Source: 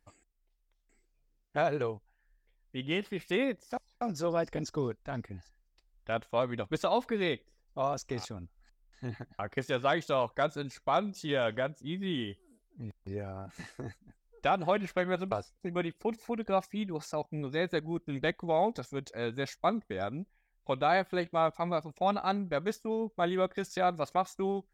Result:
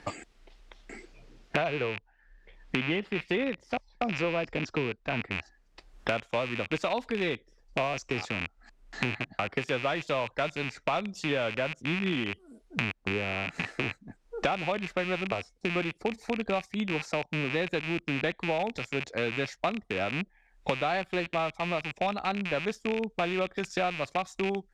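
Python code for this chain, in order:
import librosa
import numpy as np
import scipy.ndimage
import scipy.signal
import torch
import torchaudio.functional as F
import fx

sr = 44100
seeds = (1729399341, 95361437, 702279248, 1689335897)

y = fx.rattle_buzz(x, sr, strikes_db=-47.0, level_db=-24.0)
y = fx.lowpass(y, sr, hz=fx.steps((0.0, 4200.0), (5.32, 7700.0)), slope=12)
y = fx.band_squash(y, sr, depth_pct=100)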